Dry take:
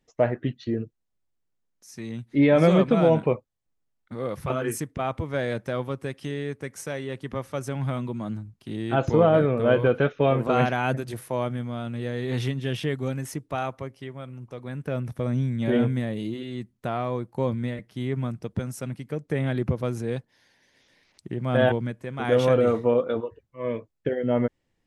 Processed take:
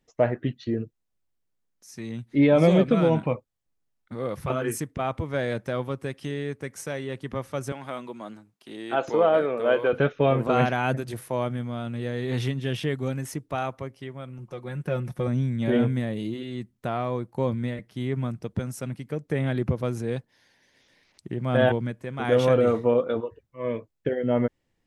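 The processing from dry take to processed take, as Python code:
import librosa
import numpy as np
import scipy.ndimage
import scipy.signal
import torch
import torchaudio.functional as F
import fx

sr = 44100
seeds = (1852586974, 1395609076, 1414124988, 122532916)

y = fx.peak_eq(x, sr, hz=fx.line((2.46, 2200.0), (3.34, 370.0)), db=-15.0, octaves=0.26, at=(2.46, 3.34), fade=0.02)
y = fx.highpass(y, sr, hz=390.0, slope=12, at=(7.72, 9.93))
y = fx.comb(y, sr, ms=5.6, depth=0.65, at=(14.38, 15.28))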